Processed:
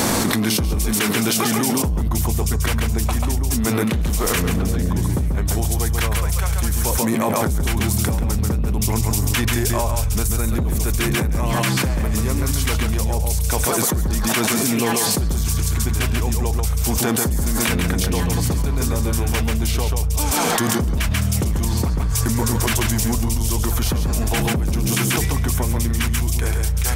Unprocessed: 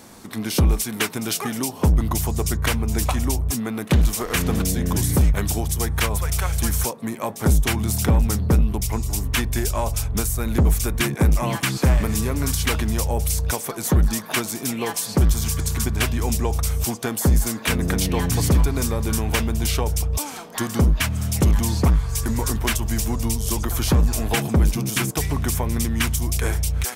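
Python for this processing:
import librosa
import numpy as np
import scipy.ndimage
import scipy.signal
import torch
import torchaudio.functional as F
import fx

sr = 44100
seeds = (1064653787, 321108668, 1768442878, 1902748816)

p1 = fx.high_shelf(x, sr, hz=2800.0, db=-9.5, at=(4.4, 5.48))
p2 = p1 + fx.echo_single(p1, sr, ms=138, db=-4.5, dry=0)
p3 = fx.env_flatten(p2, sr, amount_pct=100)
y = p3 * librosa.db_to_amplitude(-7.0)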